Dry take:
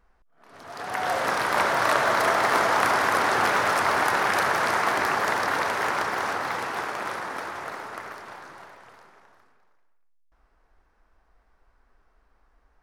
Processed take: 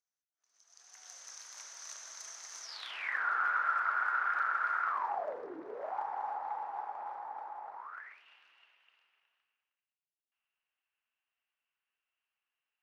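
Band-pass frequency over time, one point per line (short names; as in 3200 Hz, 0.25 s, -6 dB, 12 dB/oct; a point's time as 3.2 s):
band-pass, Q 11
2.61 s 6200 Hz
3.26 s 1400 Hz
4.86 s 1400 Hz
5.6 s 310 Hz
5.96 s 830 Hz
7.74 s 830 Hz
8.22 s 2800 Hz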